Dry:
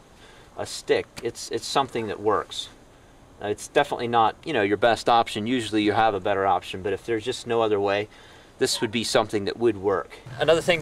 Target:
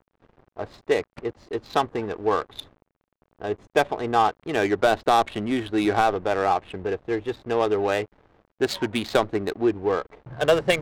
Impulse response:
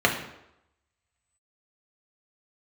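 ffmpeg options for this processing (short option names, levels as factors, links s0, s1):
-af "aeval=exprs='val(0)*gte(abs(val(0)),0.0075)':c=same,adynamicsmooth=sensitivity=2.5:basefreq=910"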